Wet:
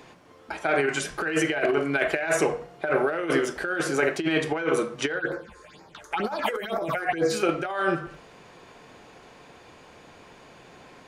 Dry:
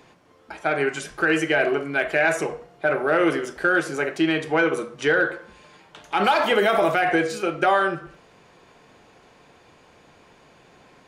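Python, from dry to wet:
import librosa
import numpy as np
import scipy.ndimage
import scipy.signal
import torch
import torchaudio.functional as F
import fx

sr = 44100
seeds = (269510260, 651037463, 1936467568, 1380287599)

y = fx.hum_notches(x, sr, base_hz=50, count=4)
y = fx.over_compress(y, sr, threshold_db=-23.0, ratio=-0.5)
y = fx.phaser_stages(y, sr, stages=6, low_hz=180.0, high_hz=3100.0, hz=2.1, feedback_pct=25, at=(5.18, 7.3), fade=0.02)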